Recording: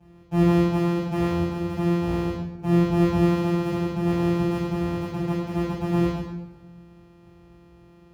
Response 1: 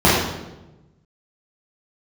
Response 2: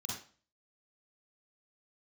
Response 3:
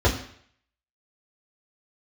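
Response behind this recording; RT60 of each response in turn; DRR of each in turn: 1; 1.0, 0.40, 0.60 s; -9.0, -4.5, -6.0 dB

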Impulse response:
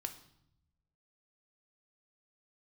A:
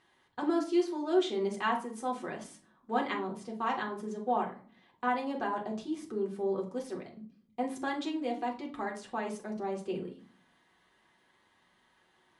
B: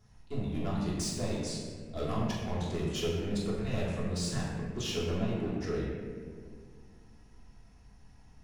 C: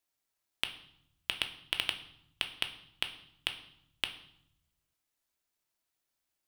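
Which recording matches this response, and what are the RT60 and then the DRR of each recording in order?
C; 0.45, 2.0, 0.75 s; 0.0, -7.5, 5.5 dB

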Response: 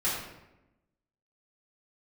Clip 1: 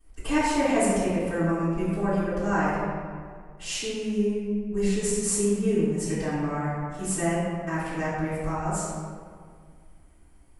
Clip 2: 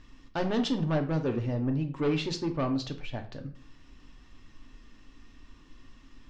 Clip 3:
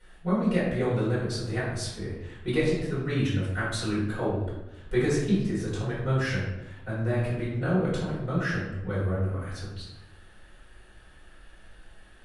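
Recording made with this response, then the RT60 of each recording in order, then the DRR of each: 3; 2.0, 0.45, 0.95 s; -15.0, 4.0, -9.5 dB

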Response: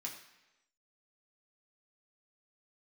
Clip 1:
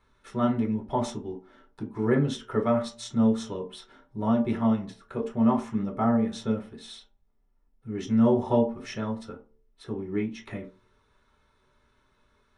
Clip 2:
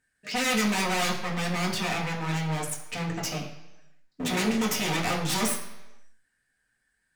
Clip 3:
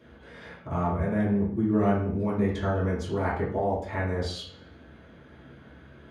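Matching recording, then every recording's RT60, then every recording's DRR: 2; 0.45, 1.0, 0.60 s; -2.0, -2.5, -10.0 dB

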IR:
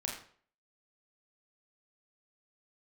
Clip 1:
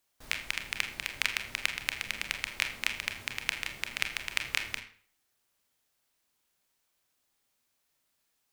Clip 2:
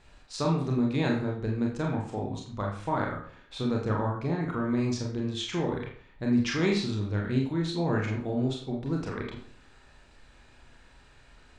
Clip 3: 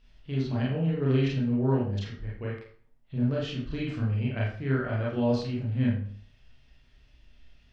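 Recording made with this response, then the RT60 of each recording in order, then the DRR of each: 2; 0.50, 0.50, 0.50 s; 5.5, -1.5, -6.0 dB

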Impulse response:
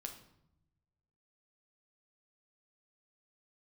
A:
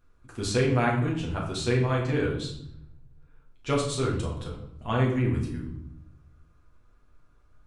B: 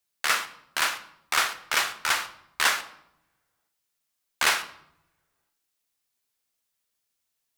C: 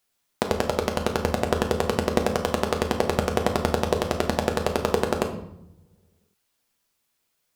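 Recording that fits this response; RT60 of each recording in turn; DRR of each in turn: C; 0.75 s, not exponential, 0.80 s; -3.5, 9.0, 3.0 dB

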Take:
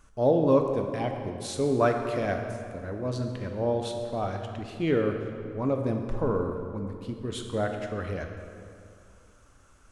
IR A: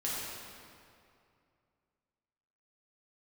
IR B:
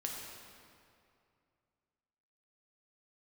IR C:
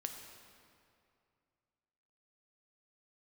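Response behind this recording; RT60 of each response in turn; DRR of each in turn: C; 2.5, 2.5, 2.4 s; -7.5, -1.5, 4.0 dB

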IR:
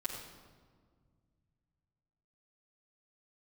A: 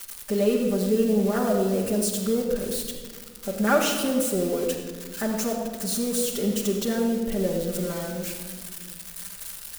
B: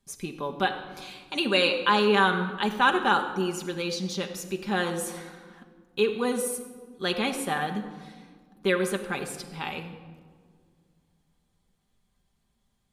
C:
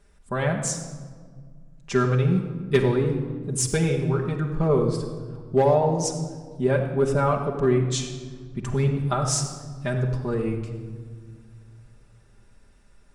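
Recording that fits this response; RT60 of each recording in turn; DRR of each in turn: A; not exponential, not exponential, not exponential; -7.0, 3.5, -0.5 dB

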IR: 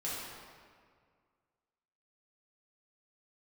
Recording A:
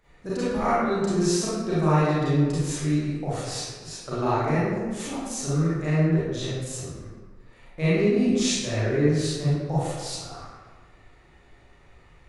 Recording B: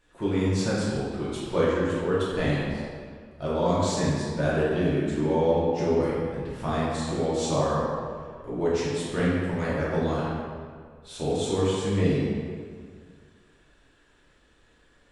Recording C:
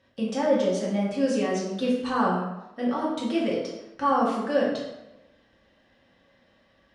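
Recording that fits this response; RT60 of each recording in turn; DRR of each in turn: B; 1.4, 2.0, 1.0 s; -11.0, -8.5, -5.5 dB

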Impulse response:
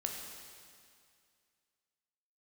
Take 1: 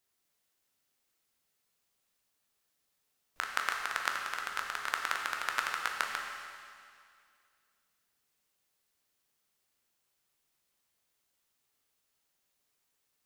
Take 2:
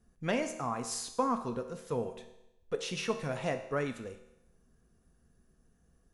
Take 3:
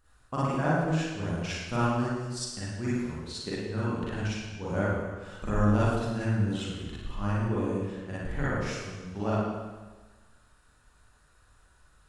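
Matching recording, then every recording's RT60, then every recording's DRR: 1; 2.2, 0.85, 1.3 s; 1.0, 7.0, -10.0 dB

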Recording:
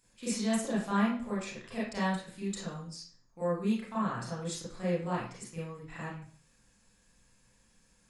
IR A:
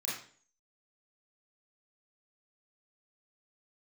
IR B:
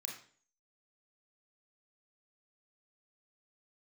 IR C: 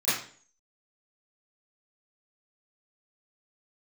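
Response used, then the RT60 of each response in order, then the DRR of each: A; 0.45, 0.45, 0.45 s; -8.0, -1.0, -18.0 dB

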